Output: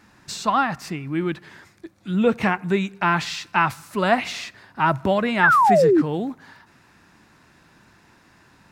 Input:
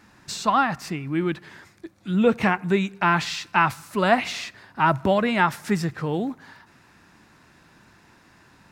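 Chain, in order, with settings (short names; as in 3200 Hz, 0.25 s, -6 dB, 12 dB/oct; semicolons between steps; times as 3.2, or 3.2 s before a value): painted sound fall, 5.43–6.02, 280–1800 Hz -15 dBFS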